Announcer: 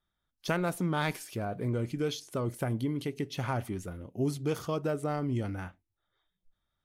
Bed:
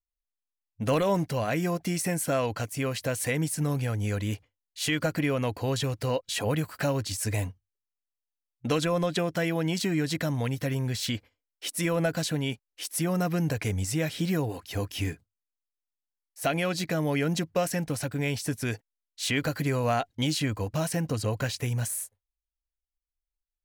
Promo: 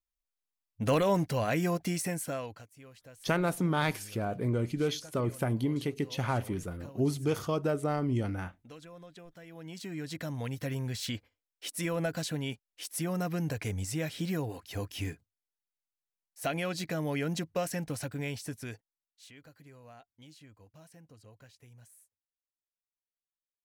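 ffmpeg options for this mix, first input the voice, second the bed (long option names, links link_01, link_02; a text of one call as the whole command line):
ffmpeg -i stem1.wav -i stem2.wav -filter_complex "[0:a]adelay=2800,volume=1.5dB[link_01];[1:a]volume=16.5dB,afade=type=out:start_time=1.76:duration=0.91:silence=0.0794328,afade=type=in:start_time=9.46:duration=1.23:silence=0.125893,afade=type=out:start_time=18.03:duration=1.28:silence=0.0841395[link_02];[link_01][link_02]amix=inputs=2:normalize=0" out.wav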